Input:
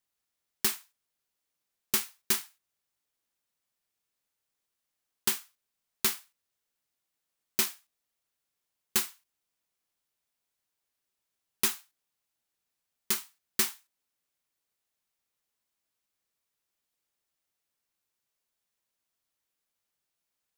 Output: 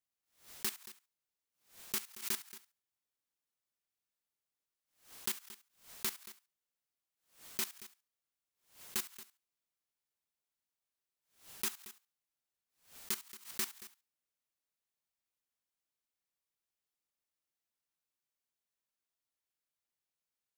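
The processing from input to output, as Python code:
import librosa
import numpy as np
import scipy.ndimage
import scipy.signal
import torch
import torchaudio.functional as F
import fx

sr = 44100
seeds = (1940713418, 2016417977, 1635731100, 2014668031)

p1 = fx.level_steps(x, sr, step_db=15)
p2 = p1 + fx.echo_single(p1, sr, ms=227, db=-16.0, dry=0)
p3 = fx.pre_swell(p2, sr, db_per_s=140.0)
y = p3 * librosa.db_to_amplitude(-3.5)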